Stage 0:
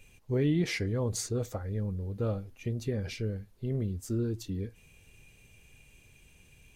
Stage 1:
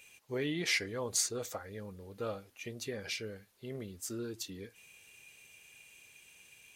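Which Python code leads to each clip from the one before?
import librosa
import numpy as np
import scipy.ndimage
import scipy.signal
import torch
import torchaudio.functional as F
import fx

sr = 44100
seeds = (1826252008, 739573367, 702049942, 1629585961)

y = fx.highpass(x, sr, hz=1300.0, slope=6)
y = y * librosa.db_to_amplitude(5.0)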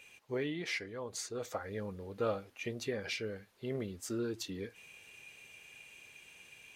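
y = fx.low_shelf(x, sr, hz=190.0, db=-4.0)
y = fx.rider(y, sr, range_db=5, speed_s=0.5)
y = fx.high_shelf(y, sr, hz=5000.0, db=-12.0)
y = y * librosa.db_to_amplitude(1.0)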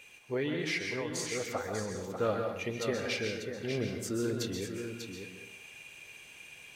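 y = x + 10.0 ** (-7.5 / 20.0) * np.pad(x, (int(593 * sr / 1000.0), 0))[:len(x)]
y = fx.rev_plate(y, sr, seeds[0], rt60_s=0.66, hf_ratio=0.75, predelay_ms=115, drr_db=3.5)
y = y * librosa.db_to_amplitude(3.0)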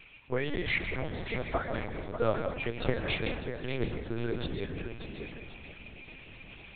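y = fx.echo_thinned(x, sr, ms=1079, feedback_pct=50, hz=200.0, wet_db=-15)
y = fx.hpss(y, sr, part='harmonic', gain_db=-9)
y = fx.lpc_vocoder(y, sr, seeds[1], excitation='pitch_kept', order=8)
y = y * librosa.db_to_amplitude(6.0)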